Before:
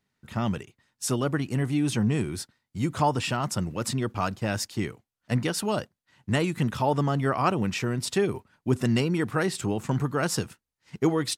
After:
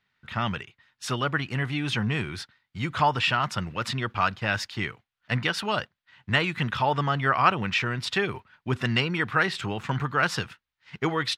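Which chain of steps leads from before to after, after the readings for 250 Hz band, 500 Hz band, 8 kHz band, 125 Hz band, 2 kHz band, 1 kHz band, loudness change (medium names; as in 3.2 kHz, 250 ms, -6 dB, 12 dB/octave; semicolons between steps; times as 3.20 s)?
-5.0 dB, -3.0 dB, -8.0 dB, -2.0 dB, +8.0 dB, +4.0 dB, +1.0 dB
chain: FFT filter 130 Hz 0 dB, 290 Hz -5 dB, 610 Hz 0 dB, 1.5 kHz +10 dB, 3.5 kHz +9 dB, 8.3 kHz -10 dB; trim -1.5 dB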